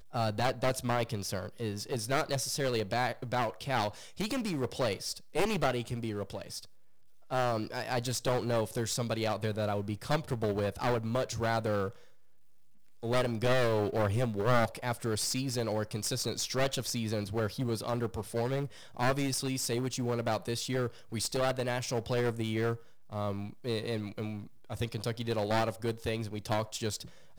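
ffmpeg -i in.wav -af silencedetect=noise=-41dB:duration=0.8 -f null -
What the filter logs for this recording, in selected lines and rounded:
silence_start: 11.90
silence_end: 13.03 | silence_duration: 1.13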